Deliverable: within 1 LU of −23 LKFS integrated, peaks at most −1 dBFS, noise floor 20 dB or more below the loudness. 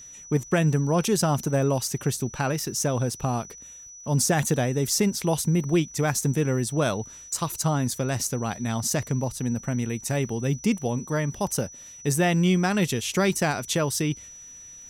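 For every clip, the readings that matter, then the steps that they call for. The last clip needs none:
crackle rate 37 per second; interfering tone 5,900 Hz; level of the tone −42 dBFS; integrated loudness −25.5 LKFS; sample peak −11.0 dBFS; target loudness −23.0 LKFS
→ click removal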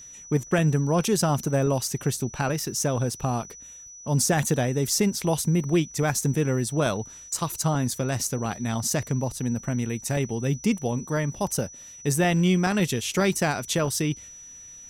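crackle rate 0.27 per second; interfering tone 5,900 Hz; level of the tone −42 dBFS
→ notch filter 5,900 Hz, Q 30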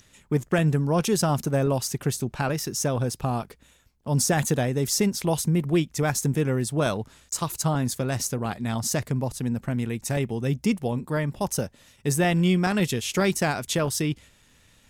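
interfering tone none found; integrated loudness −25.5 LKFS; sample peak −11.0 dBFS; target loudness −23.0 LKFS
→ level +2.5 dB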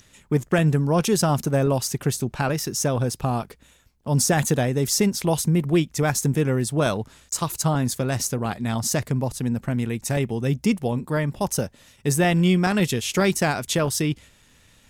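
integrated loudness −23.0 LKFS; sample peak −8.5 dBFS; background noise floor −57 dBFS

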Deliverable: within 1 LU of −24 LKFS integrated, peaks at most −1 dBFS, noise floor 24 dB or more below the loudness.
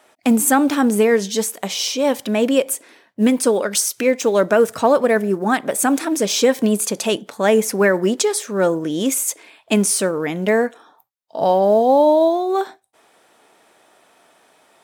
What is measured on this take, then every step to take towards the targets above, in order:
integrated loudness −17.5 LKFS; sample peak −3.0 dBFS; target loudness −24.0 LKFS
→ level −6.5 dB

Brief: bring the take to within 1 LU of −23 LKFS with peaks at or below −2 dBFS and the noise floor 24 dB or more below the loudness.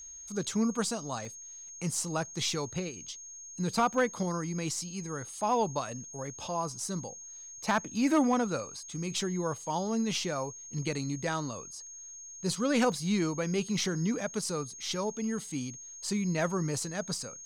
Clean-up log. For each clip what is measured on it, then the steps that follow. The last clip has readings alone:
number of dropouts 4; longest dropout 1.2 ms; interfering tone 6,500 Hz; level of the tone −44 dBFS; integrated loudness −32.0 LKFS; sample peak −17.5 dBFS; target loudness −23.0 LKFS
→ repair the gap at 0:01.25/0:02.08/0:03.94/0:12.92, 1.2 ms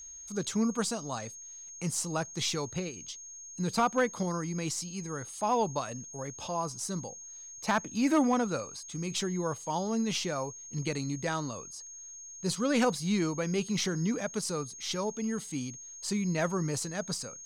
number of dropouts 0; interfering tone 6,500 Hz; level of the tone −44 dBFS
→ notch filter 6,500 Hz, Q 30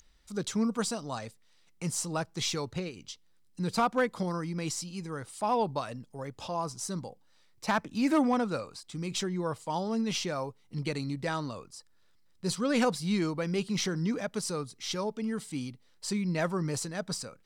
interfering tone none found; integrated loudness −32.5 LKFS; sample peak −17.5 dBFS; target loudness −23.0 LKFS
→ level +9.5 dB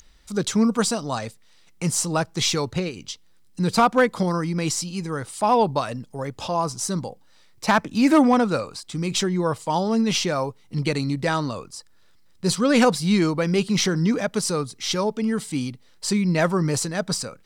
integrated loudness −23.0 LKFS; sample peak −8.0 dBFS; background noise floor −53 dBFS

